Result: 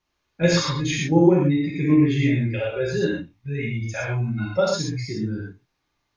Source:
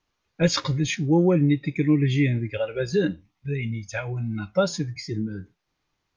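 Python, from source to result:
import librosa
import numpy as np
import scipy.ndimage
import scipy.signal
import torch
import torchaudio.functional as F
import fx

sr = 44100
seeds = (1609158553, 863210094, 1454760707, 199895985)

p1 = fx.level_steps(x, sr, step_db=17)
p2 = x + (p1 * 10.0 ** (1.0 / 20.0))
p3 = fx.rev_gated(p2, sr, seeds[0], gate_ms=150, shape='flat', drr_db=-4.5)
y = p3 * 10.0 ** (-6.5 / 20.0)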